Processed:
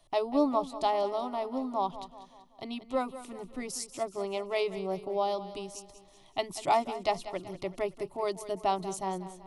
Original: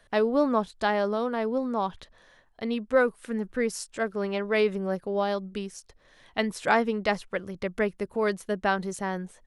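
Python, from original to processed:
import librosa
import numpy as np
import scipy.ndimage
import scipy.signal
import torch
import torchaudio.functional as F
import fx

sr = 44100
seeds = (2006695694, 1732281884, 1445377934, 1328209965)

p1 = fx.fixed_phaser(x, sr, hz=320.0, stages=8)
y = p1 + fx.echo_feedback(p1, sr, ms=190, feedback_pct=48, wet_db=-14.0, dry=0)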